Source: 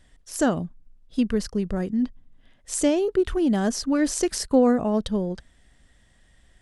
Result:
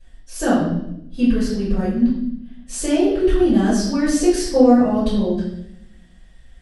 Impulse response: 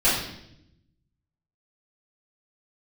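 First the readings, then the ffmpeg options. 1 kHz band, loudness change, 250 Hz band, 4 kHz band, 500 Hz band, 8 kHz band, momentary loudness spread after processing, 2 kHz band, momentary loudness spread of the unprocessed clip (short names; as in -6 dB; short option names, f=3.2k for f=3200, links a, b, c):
+6.0 dB, +5.5 dB, +6.5 dB, +3.5 dB, +5.0 dB, +1.5 dB, 14 LU, +4.5 dB, 11 LU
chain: -filter_complex "[1:a]atrim=start_sample=2205[a];[0:a][a]afir=irnorm=-1:irlink=0,volume=-12dB"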